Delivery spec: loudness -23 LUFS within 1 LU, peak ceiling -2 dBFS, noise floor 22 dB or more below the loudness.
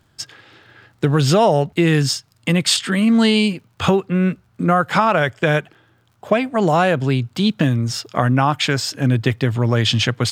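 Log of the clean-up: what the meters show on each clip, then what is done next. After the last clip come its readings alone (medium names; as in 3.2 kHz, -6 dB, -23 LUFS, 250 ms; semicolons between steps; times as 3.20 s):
tick rate 34 per s; loudness -17.5 LUFS; peak level -1.0 dBFS; loudness target -23.0 LUFS
-> de-click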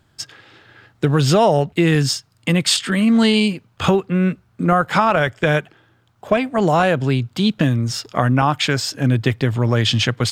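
tick rate 0.39 per s; loudness -18.0 LUFS; peak level -1.0 dBFS; loudness target -23.0 LUFS
-> trim -5 dB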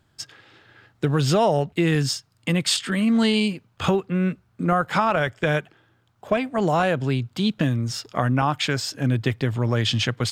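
loudness -23.0 LUFS; peak level -6.0 dBFS; noise floor -64 dBFS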